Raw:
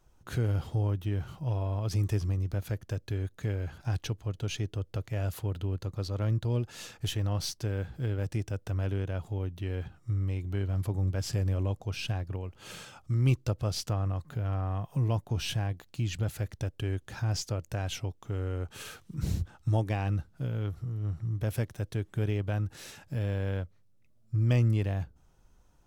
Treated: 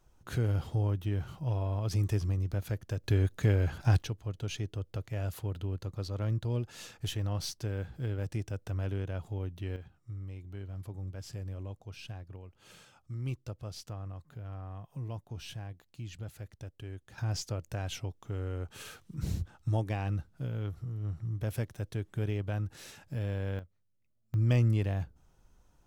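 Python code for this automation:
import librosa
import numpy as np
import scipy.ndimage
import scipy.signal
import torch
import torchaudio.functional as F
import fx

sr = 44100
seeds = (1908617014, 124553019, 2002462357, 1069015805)

y = fx.gain(x, sr, db=fx.steps((0.0, -1.0), (3.04, 6.0), (4.02, -3.0), (9.76, -11.0), (17.18, -3.0), (23.59, -12.0), (24.34, -1.0)))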